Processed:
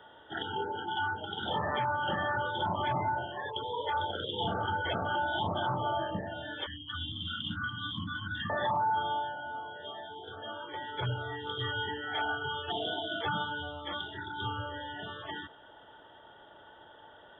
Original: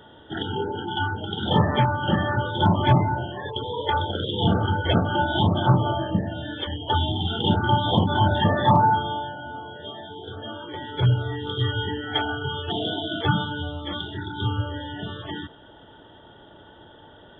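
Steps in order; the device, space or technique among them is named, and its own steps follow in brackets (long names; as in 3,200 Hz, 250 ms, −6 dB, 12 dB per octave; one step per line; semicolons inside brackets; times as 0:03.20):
DJ mixer with the lows and highs turned down (three-way crossover with the lows and the highs turned down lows −13 dB, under 520 Hz, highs −14 dB, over 3,300 Hz; brickwall limiter −21 dBFS, peak gain reduction 10.5 dB)
0:06.66–0:08.50: Chebyshev band-stop filter 300–1,100 Hz, order 5
level −2 dB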